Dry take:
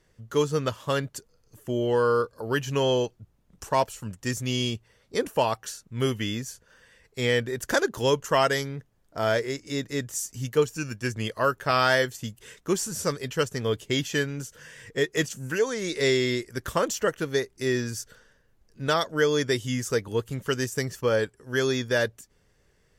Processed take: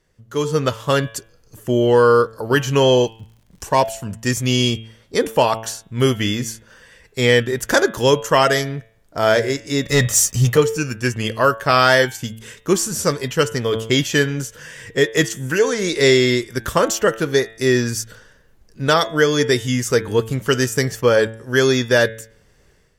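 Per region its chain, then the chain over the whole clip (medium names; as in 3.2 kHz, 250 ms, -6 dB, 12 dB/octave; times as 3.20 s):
2.85–4.01 s: band-stop 1.3 kHz, Q 5.5 + crackle 91 per s -51 dBFS
9.86–10.57 s: treble shelf 9.9 kHz -5.5 dB + comb 1.6 ms, depth 60% + waveshaping leveller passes 2
whole clip: de-hum 111.8 Hz, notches 34; level rider gain up to 11 dB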